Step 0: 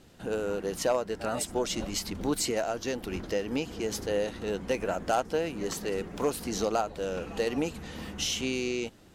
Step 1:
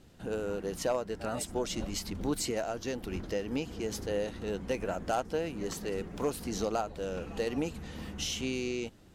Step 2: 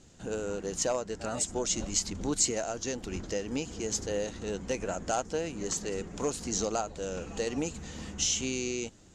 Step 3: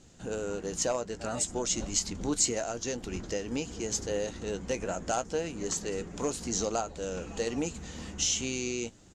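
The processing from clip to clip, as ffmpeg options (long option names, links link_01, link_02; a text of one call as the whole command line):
ffmpeg -i in.wav -af "lowshelf=frequency=200:gain=6,volume=-4.5dB" out.wav
ffmpeg -i in.wav -af "lowpass=frequency=7000:width_type=q:width=5" out.wav
ffmpeg -i in.wav -filter_complex "[0:a]asplit=2[link_01][link_02];[link_02]adelay=17,volume=-13dB[link_03];[link_01][link_03]amix=inputs=2:normalize=0" out.wav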